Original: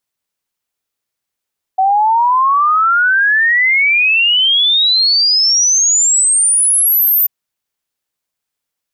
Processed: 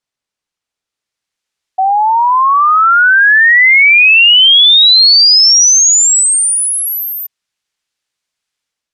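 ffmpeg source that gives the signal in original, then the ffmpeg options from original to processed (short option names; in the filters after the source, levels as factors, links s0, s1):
-f lavfi -i "aevalsrc='0.376*clip(min(t,5.49-t)/0.01,0,1)*sin(2*PI*750*5.49/log(14000/750)*(exp(log(14000/750)*t/5.49)-1))':d=5.49:s=44100"
-filter_complex "[0:a]lowpass=7200,acrossover=split=1400[s0][s1];[s1]dynaudnorm=f=860:g=3:m=2.51[s2];[s0][s2]amix=inputs=2:normalize=0"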